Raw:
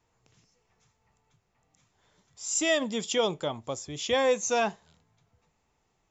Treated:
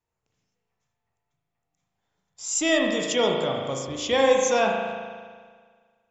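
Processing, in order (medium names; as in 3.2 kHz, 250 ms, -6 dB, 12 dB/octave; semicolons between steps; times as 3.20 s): gate -56 dBFS, range -16 dB; spring tank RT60 1.7 s, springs 37 ms, chirp 55 ms, DRR 0.5 dB; trim +2.5 dB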